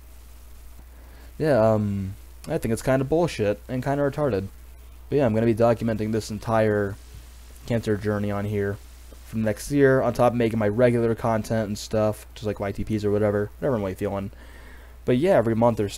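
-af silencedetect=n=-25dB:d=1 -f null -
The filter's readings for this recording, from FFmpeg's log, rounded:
silence_start: 0.00
silence_end: 1.40 | silence_duration: 1.40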